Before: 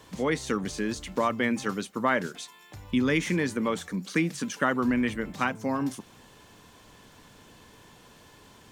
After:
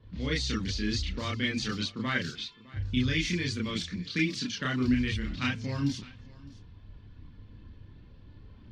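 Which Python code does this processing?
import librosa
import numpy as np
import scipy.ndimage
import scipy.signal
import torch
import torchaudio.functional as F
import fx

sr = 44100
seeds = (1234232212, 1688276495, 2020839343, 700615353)

p1 = fx.env_lowpass(x, sr, base_hz=920.0, full_db=-24.0)
p2 = fx.curve_eq(p1, sr, hz=(100.0, 790.0, 4500.0, 10000.0), db=(0, -24, 3, -21))
p3 = fx.rider(p2, sr, range_db=4, speed_s=0.5)
p4 = p2 + (p3 * 10.0 ** (-0.5 / 20.0))
p5 = fx.chorus_voices(p4, sr, voices=6, hz=0.48, base_ms=30, depth_ms=2.2, mix_pct=55)
p6 = p5 + fx.echo_single(p5, sr, ms=608, db=-21.5, dry=0)
y = p6 * 10.0 ** (5.0 / 20.0)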